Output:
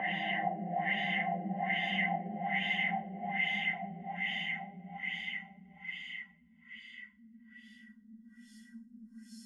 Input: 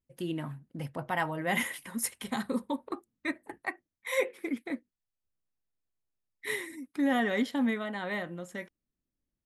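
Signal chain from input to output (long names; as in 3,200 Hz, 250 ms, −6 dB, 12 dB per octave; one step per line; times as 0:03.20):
spectral dynamics exaggerated over time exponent 3
extreme stretch with random phases 21×, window 0.50 s, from 0:01.46
auto-filter low-pass sine 1.2 Hz 430–3,900 Hz
level +1 dB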